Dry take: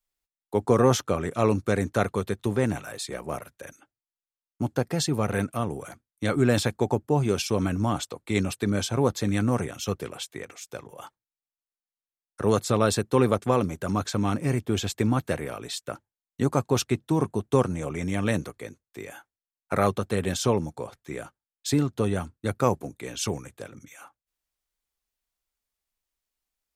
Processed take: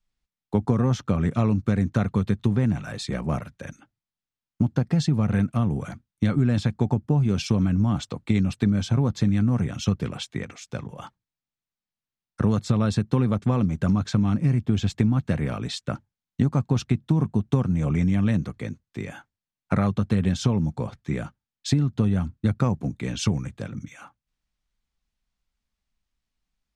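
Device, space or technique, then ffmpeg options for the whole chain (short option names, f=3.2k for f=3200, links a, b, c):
jukebox: -af "lowpass=5.6k,lowshelf=f=280:t=q:w=1.5:g=9.5,acompressor=threshold=-21dB:ratio=6,volume=3dB"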